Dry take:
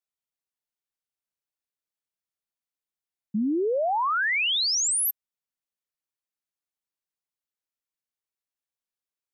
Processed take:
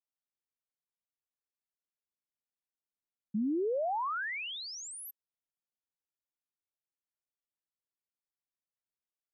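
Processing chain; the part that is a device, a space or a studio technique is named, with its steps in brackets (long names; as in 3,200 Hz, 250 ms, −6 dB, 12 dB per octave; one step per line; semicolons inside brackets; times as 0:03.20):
through cloth (high-shelf EQ 2,200 Hz −14.5 dB)
level −6 dB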